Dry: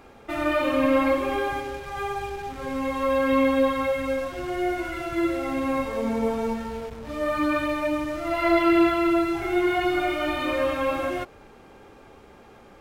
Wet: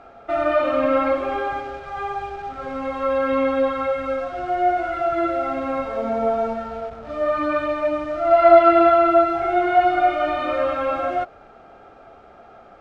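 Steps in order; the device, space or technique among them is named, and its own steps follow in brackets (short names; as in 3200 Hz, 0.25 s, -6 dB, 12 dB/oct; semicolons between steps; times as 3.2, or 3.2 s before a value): inside a cardboard box (LPF 5100 Hz 12 dB/oct; small resonant body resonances 690/1300 Hz, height 18 dB, ringing for 35 ms); gain -3 dB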